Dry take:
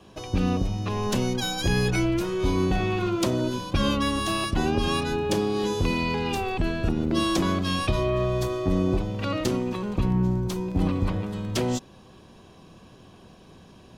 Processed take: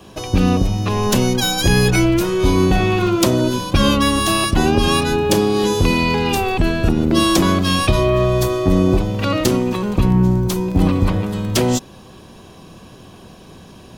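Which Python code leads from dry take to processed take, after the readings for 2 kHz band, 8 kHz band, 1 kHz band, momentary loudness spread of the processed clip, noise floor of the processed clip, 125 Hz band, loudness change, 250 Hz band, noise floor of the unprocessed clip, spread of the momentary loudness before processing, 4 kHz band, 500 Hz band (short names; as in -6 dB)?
+9.5 dB, +12.0 dB, +9.0 dB, 4 LU, -42 dBFS, +9.0 dB, +9.0 dB, +9.0 dB, -51 dBFS, 4 LU, +10.0 dB, +9.0 dB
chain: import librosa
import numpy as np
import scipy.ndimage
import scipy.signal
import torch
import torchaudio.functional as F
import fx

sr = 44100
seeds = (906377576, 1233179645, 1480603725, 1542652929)

y = fx.high_shelf(x, sr, hz=11000.0, db=12.0)
y = y * librosa.db_to_amplitude(9.0)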